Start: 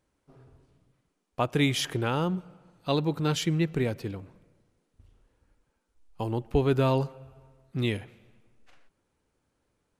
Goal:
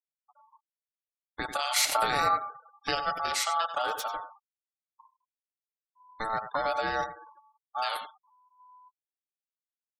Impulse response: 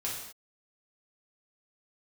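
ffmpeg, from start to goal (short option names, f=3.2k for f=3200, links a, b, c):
-filter_complex "[0:a]asettb=1/sr,asplit=3[a][b][c];[a]atrim=end=3.764[d];[b]atrim=start=3.76:end=4.23,asetpts=PTS-STARTPTS,afade=t=in:d=0.004:c=qsin,afade=t=out:st=0.466:d=0.004:c=qsin,aeval=exprs='val(0)+0.5*0.00891*sgn(val(0))':c=same[e];[c]atrim=start=4.226[f];[d][e]acrossfade=d=0.004:c1=hsin:c2=qsin[g];[g][f]acrossfade=d=0.004:c1=qsin:c2=hsin,aexciter=amount=3.6:drive=2.1:freq=2.1k,alimiter=limit=-18dB:level=0:latency=1:release=22,aecho=1:1:90:0.299,asettb=1/sr,asplit=3[h][i][j];[h]atrim=end=1.764[k];[i]atrim=start=1.76:end=2.95,asetpts=PTS-STARTPTS,afade=t=in:d=0.004:c=qsin,afade=t=out:st=1.186:d=0.004:c=qsin,acontrast=38[l];[j]atrim=start=2.946[m];[k][l]acrossfade=d=0.004:c1=hsin:c2=qsin[n];[n][m]acrossfade=d=0.004:c1=qsin:c2=hsin,asplit=2[o][p];[1:a]atrim=start_sample=2205,asetrate=66150,aresample=44100[q];[p][q]afir=irnorm=-1:irlink=0,volume=-17dB[r];[o][r]amix=inputs=2:normalize=0,acrossover=split=420|3000[s][t][u];[t]acompressor=threshold=-29dB:ratio=6[v];[s][v][u]amix=inputs=3:normalize=0,afftfilt=real='re*gte(hypot(re,im),0.0141)':imag='im*gte(hypot(re,im),0.0141)':win_size=1024:overlap=0.75,aeval=exprs='val(0)*sin(2*PI*1000*n/s)':c=same,aecho=1:1:6.7:0.38"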